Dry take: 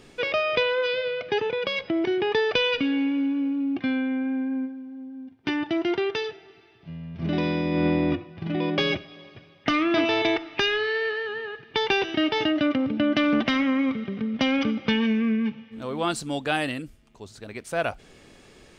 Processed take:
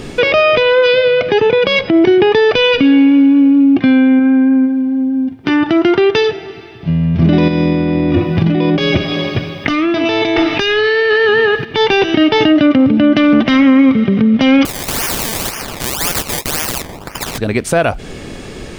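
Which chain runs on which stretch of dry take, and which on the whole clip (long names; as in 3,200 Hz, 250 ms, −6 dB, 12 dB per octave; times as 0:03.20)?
0:04.19–0:05.99: dynamic equaliser 1,300 Hz, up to +8 dB, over −53 dBFS, Q 3.2 + downward compressor 1.5 to 1, threshold −31 dBFS
0:07.48–0:11.65: compressor whose output falls as the input rises −32 dBFS + high-shelf EQ 6,700 Hz +8 dB
0:14.65–0:17.38: Butterworth high-pass 810 Hz 72 dB per octave + sample-and-hold swept by an LFO 22× 1.9 Hz + every bin compressed towards the loudest bin 4 to 1
whole clip: low-shelf EQ 450 Hz +6.5 dB; downward compressor 2.5 to 1, threshold −29 dBFS; boost into a limiter +20 dB; level −1 dB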